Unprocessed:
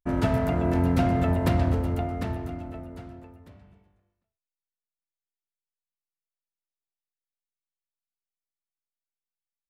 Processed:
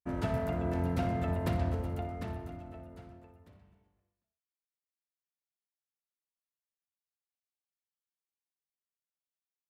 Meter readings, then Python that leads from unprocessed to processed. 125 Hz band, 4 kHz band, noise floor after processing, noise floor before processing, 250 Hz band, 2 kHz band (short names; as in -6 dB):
-8.5 dB, -8.0 dB, under -85 dBFS, under -85 dBFS, -10.0 dB, -8.0 dB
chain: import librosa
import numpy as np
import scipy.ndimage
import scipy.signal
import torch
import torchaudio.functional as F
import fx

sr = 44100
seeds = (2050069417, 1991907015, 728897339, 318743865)

p1 = scipy.signal.sosfilt(scipy.signal.butter(2, 42.0, 'highpass', fs=sr, output='sos'), x)
p2 = p1 + fx.echo_multitap(p1, sr, ms=(59, 86), db=(-12.5, -18.5), dry=0)
y = p2 * 10.0 ** (-8.5 / 20.0)